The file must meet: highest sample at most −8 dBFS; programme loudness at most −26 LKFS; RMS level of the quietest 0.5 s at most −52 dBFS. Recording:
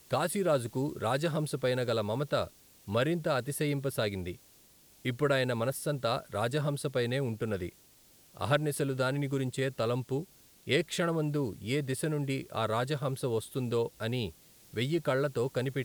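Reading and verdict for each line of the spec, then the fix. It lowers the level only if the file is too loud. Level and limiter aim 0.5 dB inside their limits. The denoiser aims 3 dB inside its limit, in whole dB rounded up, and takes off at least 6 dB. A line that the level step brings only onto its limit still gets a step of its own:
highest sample −12.5 dBFS: in spec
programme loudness −32.0 LKFS: in spec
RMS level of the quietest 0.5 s −60 dBFS: in spec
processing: no processing needed

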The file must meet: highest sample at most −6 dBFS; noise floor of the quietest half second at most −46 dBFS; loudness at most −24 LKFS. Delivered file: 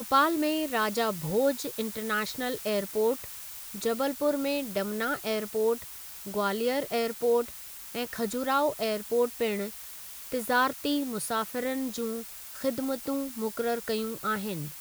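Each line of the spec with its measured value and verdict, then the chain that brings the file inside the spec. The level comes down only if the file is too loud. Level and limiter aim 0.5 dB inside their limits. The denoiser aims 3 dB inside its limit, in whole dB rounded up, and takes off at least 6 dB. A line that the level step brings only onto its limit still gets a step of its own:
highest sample −10.0 dBFS: in spec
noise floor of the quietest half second −43 dBFS: out of spec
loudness −29.5 LKFS: in spec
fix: broadband denoise 6 dB, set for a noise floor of −43 dBFS

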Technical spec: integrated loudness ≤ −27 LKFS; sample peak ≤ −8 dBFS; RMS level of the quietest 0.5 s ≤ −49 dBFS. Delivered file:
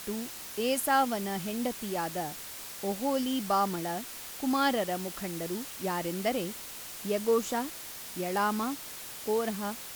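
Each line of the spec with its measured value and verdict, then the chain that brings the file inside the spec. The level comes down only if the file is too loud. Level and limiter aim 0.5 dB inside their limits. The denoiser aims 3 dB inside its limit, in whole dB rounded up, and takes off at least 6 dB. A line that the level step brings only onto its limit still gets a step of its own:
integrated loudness −31.5 LKFS: in spec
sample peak −14.0 dBFS: in spec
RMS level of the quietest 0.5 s −43 dBFS: out of spec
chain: broadband denoise 9 dB, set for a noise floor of −43 dBFS

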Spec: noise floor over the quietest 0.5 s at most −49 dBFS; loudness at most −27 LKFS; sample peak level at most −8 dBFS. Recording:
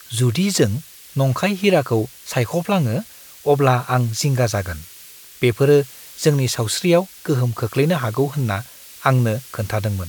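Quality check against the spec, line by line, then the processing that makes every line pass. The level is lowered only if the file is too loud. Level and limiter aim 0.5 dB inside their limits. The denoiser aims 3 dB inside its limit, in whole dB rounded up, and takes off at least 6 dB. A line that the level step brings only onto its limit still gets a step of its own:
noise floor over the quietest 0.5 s −42 dBFS: out of spec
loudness −19.5 LKFS: out of spec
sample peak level −1.5 dBFS: out of spec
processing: level −8 dB

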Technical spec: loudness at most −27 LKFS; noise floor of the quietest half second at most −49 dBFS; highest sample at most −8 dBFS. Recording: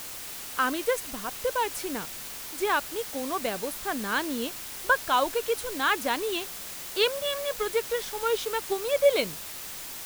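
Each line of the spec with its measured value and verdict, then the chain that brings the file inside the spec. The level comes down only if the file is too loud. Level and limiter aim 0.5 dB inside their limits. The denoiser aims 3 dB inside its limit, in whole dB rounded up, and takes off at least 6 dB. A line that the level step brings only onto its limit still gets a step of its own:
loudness −28.5 LKFS: in spec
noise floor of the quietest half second −39 dBFS: out of spec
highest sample −10.0 dBFS: in spec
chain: broadband denoise 13 dB, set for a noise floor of −39 dBFS

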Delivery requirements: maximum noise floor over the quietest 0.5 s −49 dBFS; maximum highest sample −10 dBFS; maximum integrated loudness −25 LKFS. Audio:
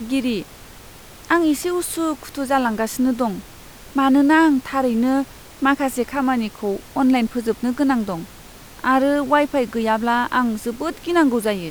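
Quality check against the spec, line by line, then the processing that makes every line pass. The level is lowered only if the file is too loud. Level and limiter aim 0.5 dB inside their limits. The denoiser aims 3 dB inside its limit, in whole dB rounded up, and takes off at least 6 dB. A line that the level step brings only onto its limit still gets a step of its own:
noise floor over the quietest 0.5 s −41 dBFS: out of spec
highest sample −3.0 dBFS: out of spec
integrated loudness −20.0 LKFS: out of spec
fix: broadband denoise 6 dB, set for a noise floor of −41 dBFS
level −5.5 dB
brickwall limiter −10.5 dBFS

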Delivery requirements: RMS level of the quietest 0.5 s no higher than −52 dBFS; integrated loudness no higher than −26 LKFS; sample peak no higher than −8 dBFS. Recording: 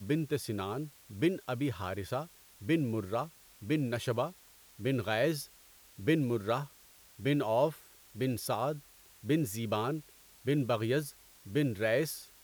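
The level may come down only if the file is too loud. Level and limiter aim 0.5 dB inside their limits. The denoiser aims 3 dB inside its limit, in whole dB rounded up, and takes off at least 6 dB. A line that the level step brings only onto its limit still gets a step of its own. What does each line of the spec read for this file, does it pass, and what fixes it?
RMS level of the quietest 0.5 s −59 dBFS: in spec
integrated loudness −33.5 LKFS: in spec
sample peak −16.5 dBFS: in spec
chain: no processing needed

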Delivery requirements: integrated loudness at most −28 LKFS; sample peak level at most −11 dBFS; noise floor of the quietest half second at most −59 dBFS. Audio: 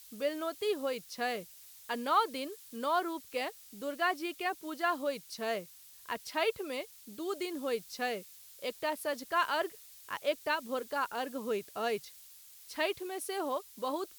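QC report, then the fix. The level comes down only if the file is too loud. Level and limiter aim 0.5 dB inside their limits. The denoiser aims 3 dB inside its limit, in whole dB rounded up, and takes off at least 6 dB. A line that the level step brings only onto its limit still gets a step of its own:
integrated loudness −35.0 LKFS: in spec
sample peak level −16.5 dBFS: in spec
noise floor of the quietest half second −55 dBFS: out of spec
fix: broadband denoise 7 dB, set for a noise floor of −55 dBFS

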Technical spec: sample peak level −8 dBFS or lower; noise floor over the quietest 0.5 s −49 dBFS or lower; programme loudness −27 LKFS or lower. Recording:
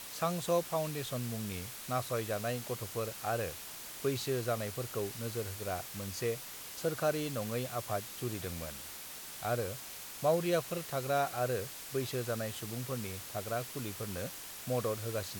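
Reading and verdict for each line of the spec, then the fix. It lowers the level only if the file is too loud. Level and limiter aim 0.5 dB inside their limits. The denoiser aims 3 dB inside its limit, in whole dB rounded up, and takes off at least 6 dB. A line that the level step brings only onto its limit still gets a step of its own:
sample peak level −18.0 dBFS: in spec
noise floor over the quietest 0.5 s −46 dBFS: out of spec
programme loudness −36.0 LKFS: in spec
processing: broadband denoise 6 dB, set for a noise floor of −46 dBFS

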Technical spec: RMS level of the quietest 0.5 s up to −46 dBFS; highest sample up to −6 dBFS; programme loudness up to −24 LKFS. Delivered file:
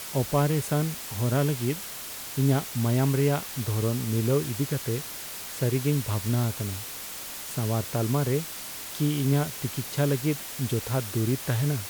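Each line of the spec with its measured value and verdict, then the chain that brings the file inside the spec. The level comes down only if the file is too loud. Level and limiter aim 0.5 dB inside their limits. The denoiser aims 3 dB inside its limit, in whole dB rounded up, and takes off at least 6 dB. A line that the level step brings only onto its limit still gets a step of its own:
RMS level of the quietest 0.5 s −38 dBFS: out of spec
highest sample −11.5 dBFS: in spec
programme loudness −27.5 LKFS: in spec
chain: broadband denoise 11 dB, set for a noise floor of −38 dBFS

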